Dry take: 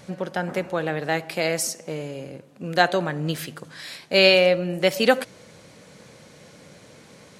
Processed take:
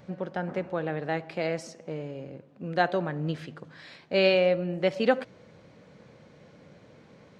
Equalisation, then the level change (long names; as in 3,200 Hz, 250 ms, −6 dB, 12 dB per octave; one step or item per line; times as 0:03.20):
head-to-tape spacing loss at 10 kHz 35 dB
high-shelf EQ 5,100 Hz +11 dB
−3.0 dB